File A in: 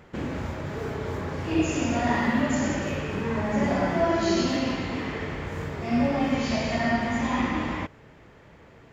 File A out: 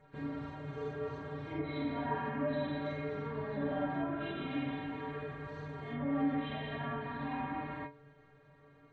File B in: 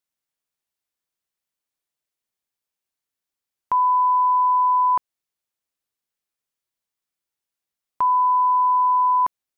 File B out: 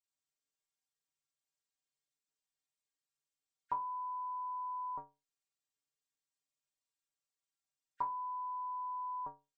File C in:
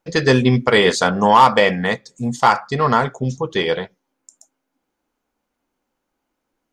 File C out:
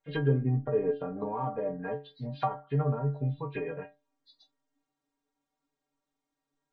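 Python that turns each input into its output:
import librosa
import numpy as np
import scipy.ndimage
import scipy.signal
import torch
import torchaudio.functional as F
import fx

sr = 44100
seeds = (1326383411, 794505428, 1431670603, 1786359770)

y = fx.freq_compress(x, sr, knee_hz=1400.0, ratio=1.5)
y = fx.env_lowpass_down(y, sr, base_hz=470.0, full_db=-14.0)
y = fx.stiff_resonator(y, sr, f0_hz=140.0, decay_s=0.31, stiffness=0.008)
y = F.gain(torch.from_numpy(y), 1.5).numpy()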